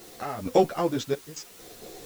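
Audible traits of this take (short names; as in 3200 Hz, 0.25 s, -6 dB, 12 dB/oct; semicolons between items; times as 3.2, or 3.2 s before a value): random-step tremolo 4.4 Hz, depth 95%; a quantiser's noise floor 10-bit, dither triangular; a shimmering, thickened sound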